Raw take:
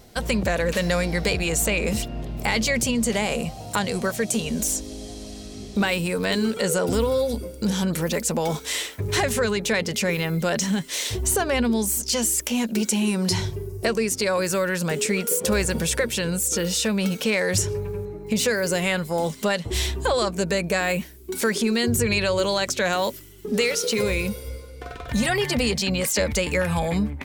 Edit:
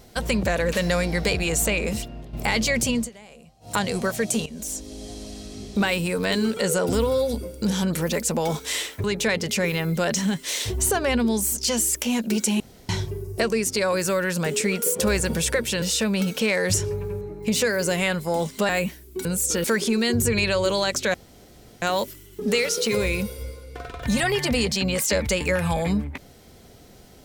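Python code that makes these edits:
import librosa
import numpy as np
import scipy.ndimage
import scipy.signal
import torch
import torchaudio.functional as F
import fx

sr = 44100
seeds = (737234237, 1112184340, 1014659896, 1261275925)

y = fx.edit(x, sr, fx.fade_out_to(start_s=1.69, length_s=0.64, floor_db=-10.0),
    fx.fade_down_up(start_s=2.97, length_s=0.77, db=-22.0, fade_s=0.13),
    fx.fade_in_from(start_s=4.46, length_s=0.66, floor_db=-15.0),
    fx.cut(start_s=9.04, length_s=0.45),
    fx.room_tone_fill(start_s=13.05, length_s=0.29),
    fx.move(start_s=16.27, length_s=0.39, to_s=21.38),
    fx.cut(start_s=19.53, length_s=1.29),
    fx.insert_room_tone(at_s=22.88, length_s=0.68), tone=tone)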